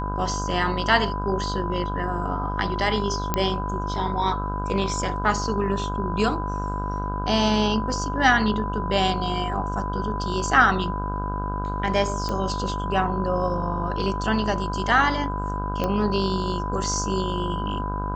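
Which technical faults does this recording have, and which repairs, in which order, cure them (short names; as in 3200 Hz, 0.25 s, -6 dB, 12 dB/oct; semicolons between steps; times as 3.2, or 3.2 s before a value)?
buzz 50 Hz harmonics 32 -29 dBFS
tone 1000 Hz -30 dBFS
3.34 pop -7 dBFS
12.29 pop -15 dBFS
15.84 pop -12 dBFS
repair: de-click; notch 1000 Hz, Q 30; de-hum 50 Hz, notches 32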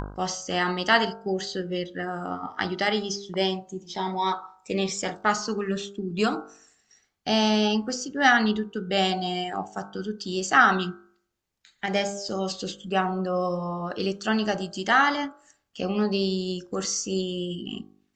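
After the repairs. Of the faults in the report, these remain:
none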